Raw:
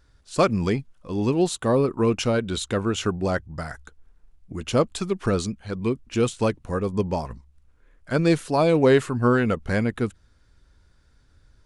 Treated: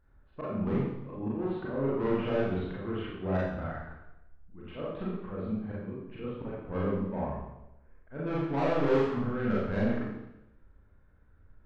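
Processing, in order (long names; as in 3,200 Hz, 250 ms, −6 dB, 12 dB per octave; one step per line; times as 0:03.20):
volume swells 252 ms
Gaussian smoothing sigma 4.3 samples
soft clipping −22.5 dBFS, distortion −8 dB
four-comb reverb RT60 0.88 s, combs from 29 ms, DRR −7 dB
level −8.5 dB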